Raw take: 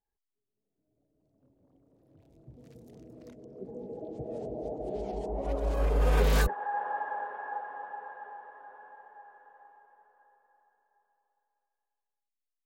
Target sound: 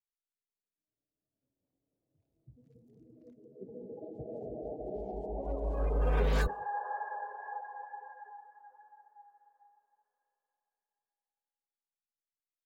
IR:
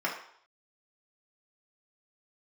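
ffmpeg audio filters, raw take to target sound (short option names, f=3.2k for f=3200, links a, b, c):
-filter_complex "[0:a]asplit=2[a][b];[1:a]atrim=start_sample=2205,asetrate=23373,aresample=44100,adelay=132[c];[b][c]afir=irnorm=-1:irlink=0,volume=-29.5dB[d];[a][d]amix=inputs=2:normalize=0,afftdn=nr=17:nf=-40,volume=-4dB"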